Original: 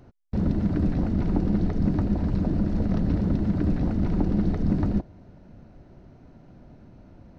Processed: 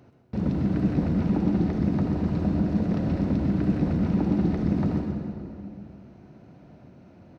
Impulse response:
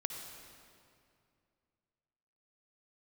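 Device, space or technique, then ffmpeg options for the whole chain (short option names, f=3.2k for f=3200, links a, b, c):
PA in a hall: -filter_complex "[0:a]highpass=100,equalizer=f=2.5k:t=o:w=0.34:g=4,aecho=1:1:128:0.398[a];[1:a]atrim=start_sample=2205[b];[a][b]afir=irnorm=-1:irlink=0"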